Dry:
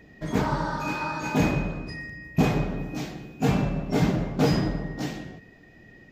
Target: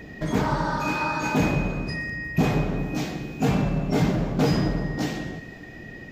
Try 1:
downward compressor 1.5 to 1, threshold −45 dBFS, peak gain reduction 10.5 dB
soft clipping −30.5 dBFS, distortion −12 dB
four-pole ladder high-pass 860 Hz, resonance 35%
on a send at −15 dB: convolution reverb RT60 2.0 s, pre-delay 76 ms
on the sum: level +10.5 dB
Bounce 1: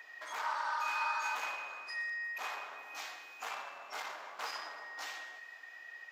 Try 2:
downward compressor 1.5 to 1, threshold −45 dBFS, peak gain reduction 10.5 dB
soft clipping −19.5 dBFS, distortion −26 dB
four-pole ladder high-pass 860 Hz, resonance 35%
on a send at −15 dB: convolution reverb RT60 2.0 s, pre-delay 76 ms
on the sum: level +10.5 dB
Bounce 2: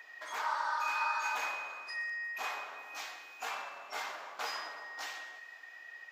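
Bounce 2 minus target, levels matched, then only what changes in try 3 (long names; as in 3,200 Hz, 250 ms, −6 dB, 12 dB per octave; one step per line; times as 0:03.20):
1,000 Hz band +5.5 dB
remove: four-pole ladder high-pass 860 Hz, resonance 35%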